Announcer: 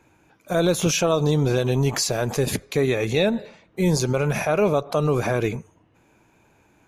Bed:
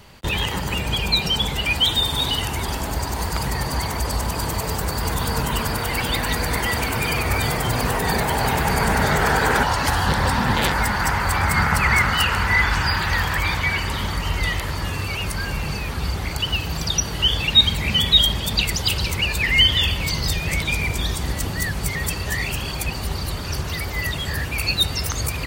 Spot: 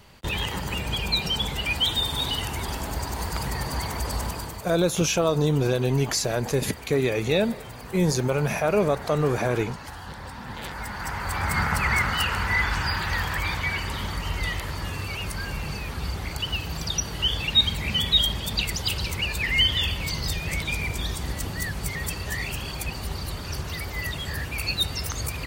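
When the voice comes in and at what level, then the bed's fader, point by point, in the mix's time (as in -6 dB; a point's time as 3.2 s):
4.15 s, -2.0 dB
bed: 4.26 s -5 dB
4.81 s -19 dB
10.34 s -19 dB
11.54 s -5.5 dB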